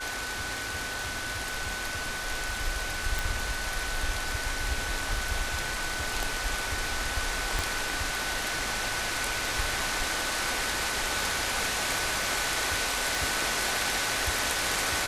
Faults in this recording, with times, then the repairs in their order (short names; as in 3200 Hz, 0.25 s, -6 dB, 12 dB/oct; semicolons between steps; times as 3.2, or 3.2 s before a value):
crackle 28/s -37 dBFS
tone 1500 Hz -36 dBFS
3.19 pop
7.59 pop
13.15 pop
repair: de-click; notch 1500 Hz, Q 30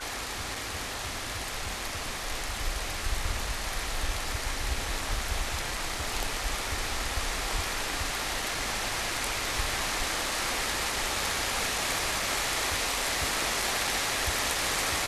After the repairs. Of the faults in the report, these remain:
7.59 pop
13.15 pop